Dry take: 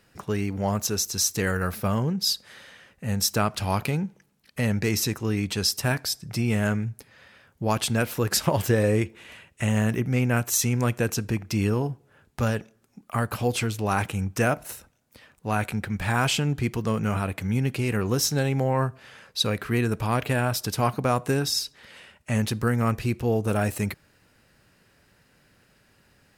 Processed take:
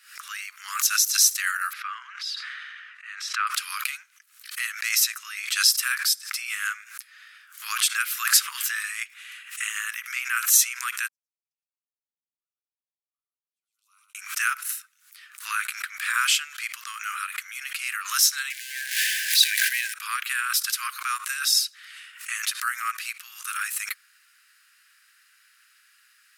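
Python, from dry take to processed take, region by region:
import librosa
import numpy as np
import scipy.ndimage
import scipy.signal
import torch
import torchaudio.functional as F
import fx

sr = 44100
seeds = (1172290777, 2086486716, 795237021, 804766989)

y = fx.chain(x, sr, fx.bandpass_edges(low_hz=590.0, high_hz=2400.0),
    fx.sustainer(db_per_s=22.0), at=(1.73, 3.47))
y = fx.chain(y, sr, fx.cheby2_lowpass(hz=650.0, order=4, stop_db=70),
    fx.echo_single(ms=113, db=-5.0), at=(11.08, 14.15))
y = fx.chain(y, sr, fx.zero_step(step_db=-27.5),
    fx.brickwall_bandstop(low_hz=180.0, high_hz=1500.0),
    fx.sustainer(db_per_s=28.0), at=(18.5, 19.94))
y = scipy.signal.sosfilt(scipy.signal.butter(12, 1200.0, 'highpass', fs=sr, output='sos'), y)
y = fx.peak_eq(y, sr, hz=11000.0, db=5.0, octaves=0.93)
y = fx.pre_swell(y, sr, db_per_s=110.0)
y = F.gain(torch.from_numpy(y), 4.0).numpy()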